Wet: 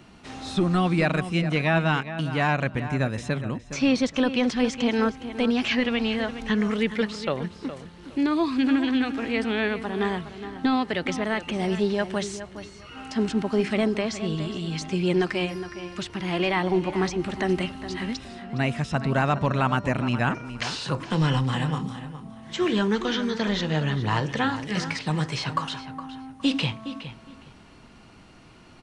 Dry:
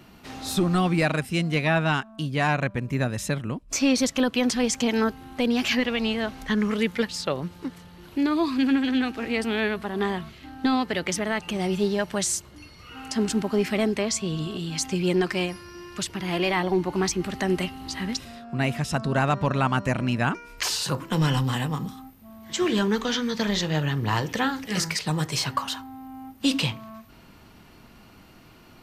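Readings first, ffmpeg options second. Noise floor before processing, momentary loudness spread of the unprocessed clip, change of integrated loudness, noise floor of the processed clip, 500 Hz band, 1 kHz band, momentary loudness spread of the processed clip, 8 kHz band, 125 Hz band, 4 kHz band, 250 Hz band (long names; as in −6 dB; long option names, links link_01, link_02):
−51 dBFS, 9 LU, 0.0 dB, −49 dBFS, +0.5 dB, +0.5 dB, 12 LU, −10.5 dB, +0.5 dB, −2.0 dB, +0.5 dB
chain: -filter_complex "[0:a]bandreject=frequency=4700:width=29,aresample=22050,aresample=44100,acrossover=split=4500[link_01][link_02];[link_02]acompressor=threshold=-47dB:ratio=4:attack=1:release=60[link_03];[link_01][link_03]amix=inputs=2:normalize=0,asplit=2[link_04][link_05];[link_05]adelay=414,lowpass=frequency=3700:poles=1,volume=-11.5dB,asplit=2[link_06][link_07];[link_07]adelay=414,lowpass=frequency=3700:poles=1,volume=0.23,asplit=2[link_08][link_09];[link_09]adelay=414,lowpass=frequency=3700:poles=1,volume=0.23[link_10];[link_04][link_06][link_08][link_10]amix=inputs=4:normalize=0"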